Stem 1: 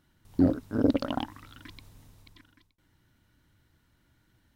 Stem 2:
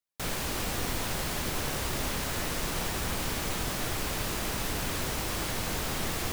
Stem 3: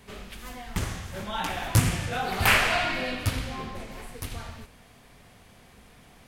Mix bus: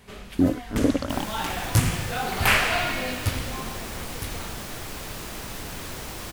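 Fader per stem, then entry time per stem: +2.0, -3.5, +0.5 dB; 0.00, 0.90, 0.00 s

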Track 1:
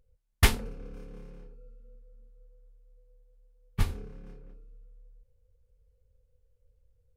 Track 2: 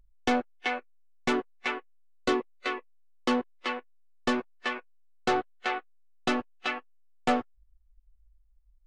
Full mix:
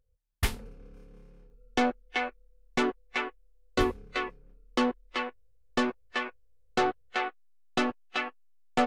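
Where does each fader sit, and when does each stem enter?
-7.0, 0.0 dB; 0.00, 1.50 s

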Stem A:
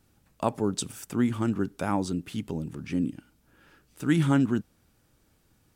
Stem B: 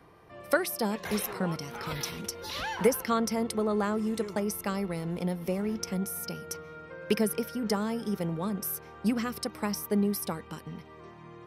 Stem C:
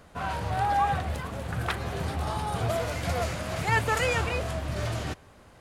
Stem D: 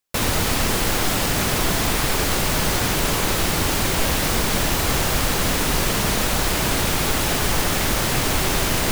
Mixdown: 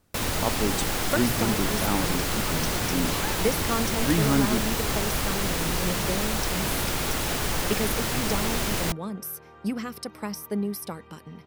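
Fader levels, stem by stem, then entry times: -1.0, -1.5, -20.0, -6.5 dB; 0.00, 0.60, 0.00, 0.00 s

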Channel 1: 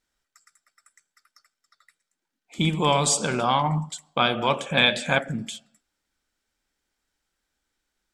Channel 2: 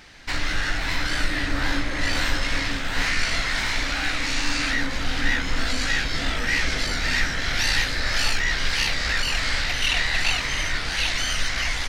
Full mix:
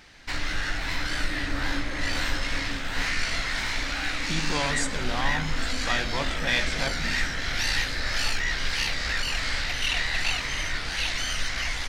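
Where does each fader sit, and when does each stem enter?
-9.0, -4.0 dB; 1.70, 0.00 s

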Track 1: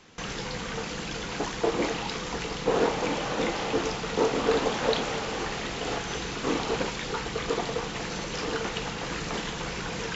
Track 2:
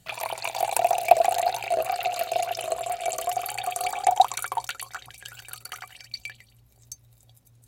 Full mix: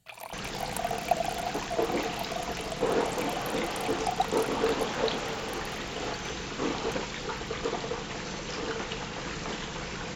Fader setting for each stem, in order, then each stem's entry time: -3.0, -10.5 dB; 0.15, 0.00 s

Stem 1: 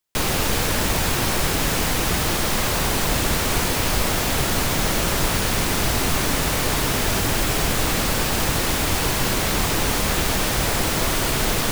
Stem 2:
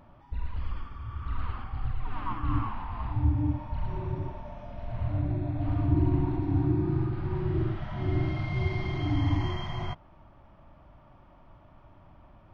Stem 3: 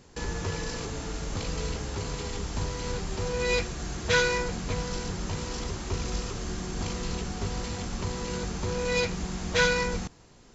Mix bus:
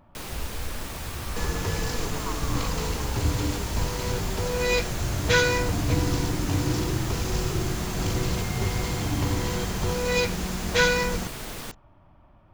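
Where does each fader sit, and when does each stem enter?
-15.0, -1.5, +2.5 dB; 0.00, 0.00, 1.20 s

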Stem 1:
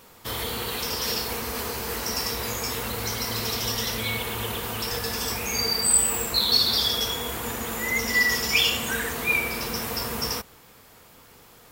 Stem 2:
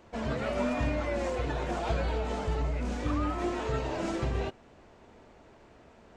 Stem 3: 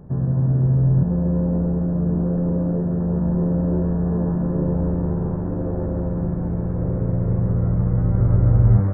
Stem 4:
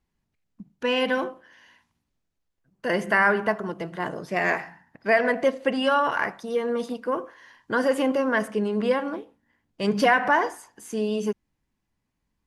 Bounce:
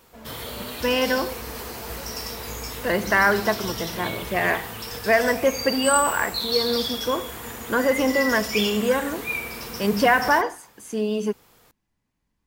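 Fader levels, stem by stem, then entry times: -5.0 dB, -10.0 dB, off, +1.5 dB; 0.00 s, 0.00 s, off, 0.00 s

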